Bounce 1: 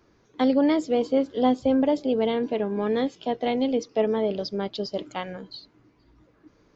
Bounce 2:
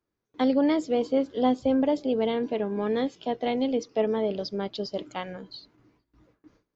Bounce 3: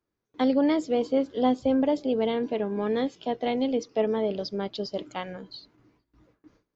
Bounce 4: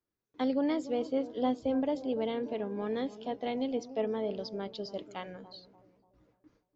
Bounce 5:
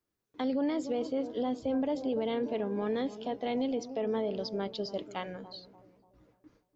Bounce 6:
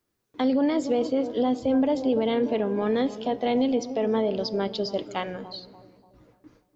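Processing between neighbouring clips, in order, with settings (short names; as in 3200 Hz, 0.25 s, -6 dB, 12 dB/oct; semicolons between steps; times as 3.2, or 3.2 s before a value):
gate with hold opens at -49 dBFS; gain -2 dB
nothing audible
analogue delay 0.291 s, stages 2048, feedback 42%, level -14.5 dB; gain -7 dB
limiter -27 dBFS, peak gain reduction 8.5 dB; gain +3.5 dB
reverb RT60 1.6 s, pre-delay 8 ms, DRR 15.5 dB; gain +7.5 dB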